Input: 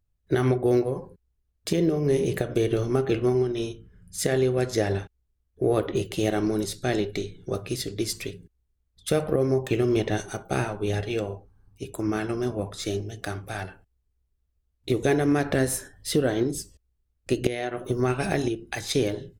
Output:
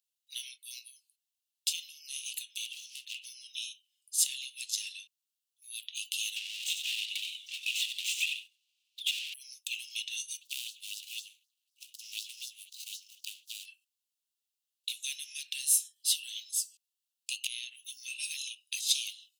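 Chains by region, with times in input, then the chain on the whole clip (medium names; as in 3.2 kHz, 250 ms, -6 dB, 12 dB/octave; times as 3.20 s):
2.65–3.25 s: bass shelf 84 Hz -8.5 dB + hard clipper -27.5 dBFS
6.36–9.34 s: median filter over 9 samples + delay 93 ms -14 dB + overdrive pedal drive 36 dB, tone 1.1 kHz, clips at -10.5 dBFS
10.41–13.66 s: median filter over 25 samples + treble shelf 5.6 kHz +7.5 dB + LFO high-pass sine 4 Hz 680–5300 Hz
whole clip: Chebyshev high-pass 2.7 kHz, order 6; dynamic bell 4.7 kHz, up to -3 dB, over -51 dBFS, Q 1.7; trim +5.5 dB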